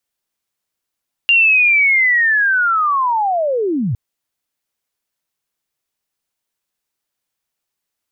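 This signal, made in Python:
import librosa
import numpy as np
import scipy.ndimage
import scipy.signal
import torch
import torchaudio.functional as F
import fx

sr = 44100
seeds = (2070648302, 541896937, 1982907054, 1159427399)

y = fx.chirp(sr, length_s=2.66, from_hz=2800.0, to_hz=97.0, law='linear', from_db=-8.0, to_db=-15.5)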